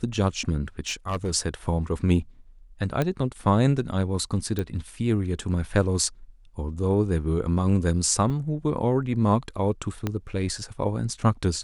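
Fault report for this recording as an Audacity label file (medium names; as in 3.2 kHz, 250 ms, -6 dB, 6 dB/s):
0.880000	1.310000	clipped -22 dBFS
3.020000	3.020000	pop -12 dBFS
4.590000	4.590000	pop -15 dBFS
8.300000	8.300000	dropout 4.1 ms
10.070000	10.070000	pop -13 dBFS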